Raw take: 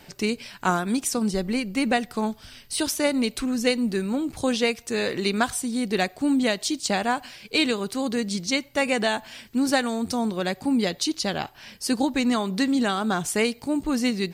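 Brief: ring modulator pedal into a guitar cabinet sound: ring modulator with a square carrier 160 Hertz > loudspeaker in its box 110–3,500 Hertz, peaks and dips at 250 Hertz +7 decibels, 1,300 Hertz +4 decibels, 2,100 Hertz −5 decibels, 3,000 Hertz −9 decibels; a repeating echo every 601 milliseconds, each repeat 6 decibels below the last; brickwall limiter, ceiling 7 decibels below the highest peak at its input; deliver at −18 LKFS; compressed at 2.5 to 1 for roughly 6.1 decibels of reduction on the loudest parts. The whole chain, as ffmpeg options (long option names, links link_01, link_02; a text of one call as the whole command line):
ffmpeg -i in.wav -af "acompressor=threshold=-26dB:ratio=2.5,alimiter=limit=-19dB:level=0:latency=1,aecho=1:1:601|1202|1803|2404|3005|3606:0.501|0.251|0.125|0.0626|0.0313|0.0157,aeval=exprs='val(0)*sgn(sin(2*PI*160*n/s))':channel_layout=same,highpass=110,equalizer=frequency=250:width_type=q:width=4:gain=7,equalizer=frequency=1300:width_type=q:width=4:gain=4,equalizer=frequency=2100:width_type=q:width=4:gain=-5,equalizer=frequency=3000:width_type=q:width=4:gain=-9,lowpass=frequency=3500:width=0.5412,lowpass=frequency=3500:width=1.3066,volume=12dB" out.wav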